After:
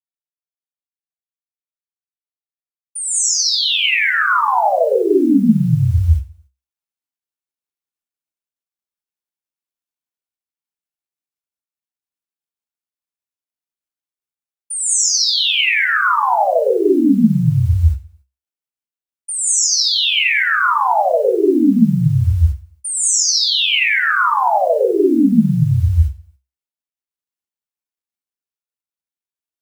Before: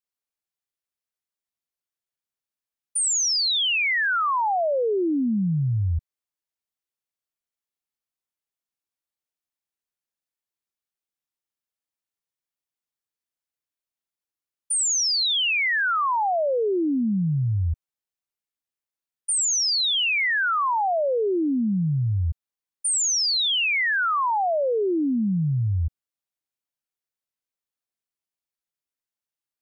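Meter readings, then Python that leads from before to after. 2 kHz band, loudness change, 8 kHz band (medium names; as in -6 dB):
+7.0 dB, +7.5 dB, +7.0 dB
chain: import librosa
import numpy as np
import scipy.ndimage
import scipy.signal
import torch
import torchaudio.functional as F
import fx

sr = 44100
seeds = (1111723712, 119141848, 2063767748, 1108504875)

p1 = scipy.signal.sosfilt(scipy.signal.butter(2, 49.0, 'highpass', fs=sr, output='sos'), x)
p2 = fx.peak_eq(p1, sr, hz=66.0, db=15.0, octaves=0.45)
p3 = fx.rider(p2, sr, range_db=10, speed_s=2.0)
p4 = fx.quant_companded(p3, sr, bits=8)
p5 = p4 + fx.echo_feedback(p4, sr, ms=93, feedback_pct=44, wet_db=-23.0, dry=0)
y = fx.rev_gated(p5, sr, seeds[0], gate_ms=220, shape='rising', drr_db=-7.0)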